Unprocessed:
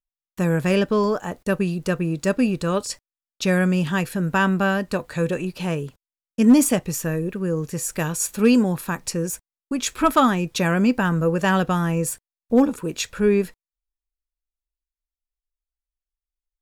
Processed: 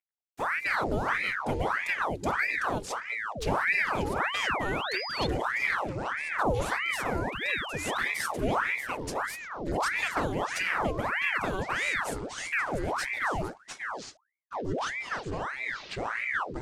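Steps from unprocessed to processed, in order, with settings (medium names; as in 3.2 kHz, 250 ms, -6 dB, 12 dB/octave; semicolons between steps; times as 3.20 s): CVSD coder 64 kbps; hum notches 50/100/150/200 Hz; compression 4:1, threshold -20 dBFS, peak gain reduction 9.5 dB; touch-sensitive flanger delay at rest 10.2 ms, full sweep at -20 dBFS; painted sound rise, 3.35–5.27 s, 220–4000 Hz -29 dBFS; ever faster or slower copies 91 ms, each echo -7 st, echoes 2; ring modulator with a swept carrier 1.2 kHz, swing 85%, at 1.6 Hz; trim -3.5 dB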